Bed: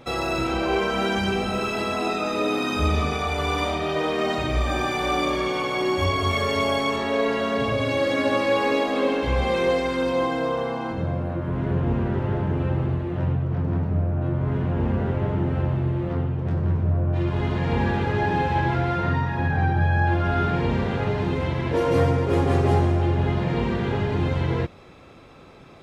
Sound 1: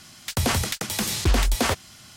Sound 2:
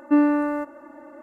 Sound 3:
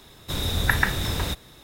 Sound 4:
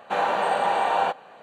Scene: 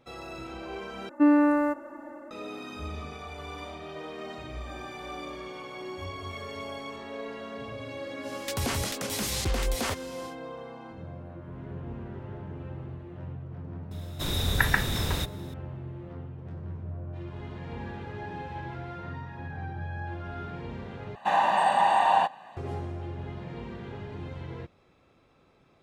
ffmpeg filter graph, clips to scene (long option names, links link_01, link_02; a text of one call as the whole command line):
ffmpeg -i bed.wav -i cue0.wav -i cue1.wav -i cue2.wav -i cue3.wav -filter_complex "[0:a]volume=-15.5dB[link_01];[2:a]dynaudnorm=framelen=100:gausssize=5:maxgain=4.5dB[link_02];[1:a]alimiter=limit=-19.5dB:level=0:latency=1:release=37[link_03];[4:a]aecho=1:1:1.1:0.8[link_04];[link_01]asplit=3[link_05][link_06][link_07];[link_05]atrim=end=1.094[link_08];[link_02]atrim=end=1.22,asetpts=PTS-STARTPTS,volume=-3.5dB[link_09];[link_06]atrim=start=2.306:end=21.154[link_10];[link_04]atrim=end=1.42,asetpts=PTS-STARTPTS,volume=-3dB[link_11];[link_07]atrim=start=22.566[link_12];[link_03]atrim=end=2.16,asetpts=PTS-STARTPTS,volume=-2dB,afade=type=in:duration=0.1,afade=type=out:start_time=2.06:duration=0.1,adelay=8200[link_13];[3:a]atrim=end=1.63,asetpts=PTS-STARTPTS,volume=-2.5dB,afade=type=in:duration=0.004:curve=hsin,afade=type=out:start_time=1.626:duration=0.004:curve=hsin,adelay=13910[link_14];[link_08][link_09]acrossfade=duration=0.004:curve1=hsin:curve2=hsin[link_15];[link_15][link_10]acrossfade=duration=0.004:curve1=hsin:curve2=hsin[link_16];[link_16][link_11]acrossfade=duration=0.004:curve1=hsin:curve2=hsin[link_17];[link_17][link_12]acrossfade=duration=0.004:curve1=hsin:curve2=hsin[link_18];[link_18][link_13][link_14]amix=inputs=3:normalize=0" out.wav